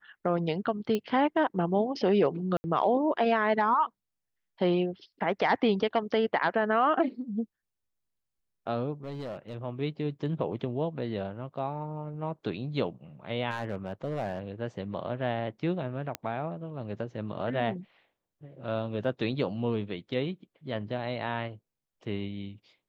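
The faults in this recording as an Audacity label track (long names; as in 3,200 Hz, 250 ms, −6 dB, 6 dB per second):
0.950000	0.950000	click −17 dBFS
2.570000	2.640000	drop-out 70 ms
9.040000	9.550000	clipping −33 dBFS
13.500000	14.400000	clipping −26 dBFS
16.150000	16.150000	click −16 dBFS
19.040000	19.040000	drop-out 2.5 ms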